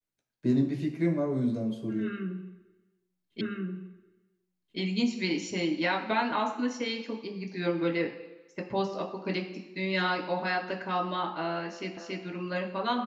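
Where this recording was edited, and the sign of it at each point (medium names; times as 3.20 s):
3.41 s: repeat of the last 1.38 s
11.97 s: repeat of the last 0.28 s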